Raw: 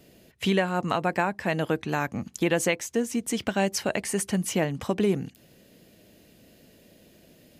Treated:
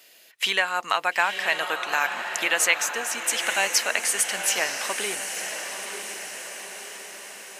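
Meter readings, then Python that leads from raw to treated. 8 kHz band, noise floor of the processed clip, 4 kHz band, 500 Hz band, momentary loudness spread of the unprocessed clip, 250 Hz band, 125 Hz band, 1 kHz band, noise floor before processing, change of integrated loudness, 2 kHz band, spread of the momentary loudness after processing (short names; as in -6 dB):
+9.5 dB, -53 dBFS, +9.5 dB, -5.0 dB, 4 LU, -17.0 dB, under -20 dB, +3.5 dB, -57 dBFS, +3.0 dB, +9.0 dB, 14 LU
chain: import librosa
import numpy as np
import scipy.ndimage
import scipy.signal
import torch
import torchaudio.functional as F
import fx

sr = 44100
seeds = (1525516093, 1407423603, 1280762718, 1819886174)

p1 = scipy.signal.sosfilt(scipy.signal.butter(2, 1200.0, 'highpass', fs=sr, output='sos'), x)
p2 = p1 + fx.echo_diffused(p1, sr, ms=932, feedback_pct=58, wet_db=-7, dry=0)
y = p2 * librosa.db_to_amplitude(8.5)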